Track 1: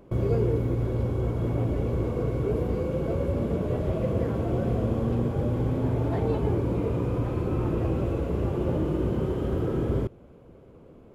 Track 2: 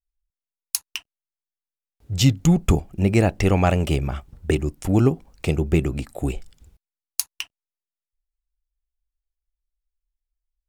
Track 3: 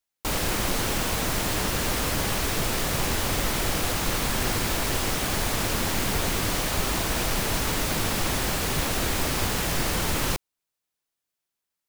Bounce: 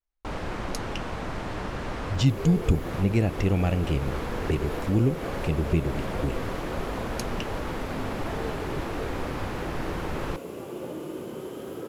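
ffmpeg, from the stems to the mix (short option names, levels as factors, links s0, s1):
-filter_complex "[0:a]highpass=250,adelay=2150,volume=0.473[s0];[1:a]lowpass=2200,equalizer=f=1100:t=o:w=2.2:g=-11.5,volume=0.668,asplit=2[s1][s2];[2:a]lowpass=1300,volume=0.596[s3];[s2]apad=whole_len=524292[s4];[s3][s4]sidechaincompress=threshold=0.0562:ratio=8:attack=8.5:release=241[s5];[s0][s1][s5]amix=inputs=3:normalize=0,crystalizer=i=4:c=0"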